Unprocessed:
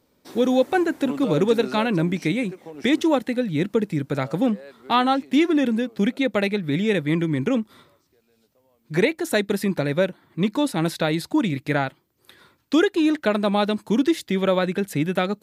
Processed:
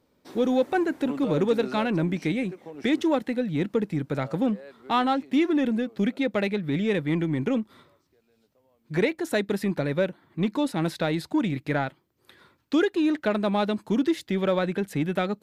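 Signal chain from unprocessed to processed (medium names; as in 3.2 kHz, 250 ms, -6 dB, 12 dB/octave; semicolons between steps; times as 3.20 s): treble shelf 4.8 kHz -7 dB; in parallel at -8 dB: saturation -23 dBFS, distortion -8 dB; on the sum: trim -5 dB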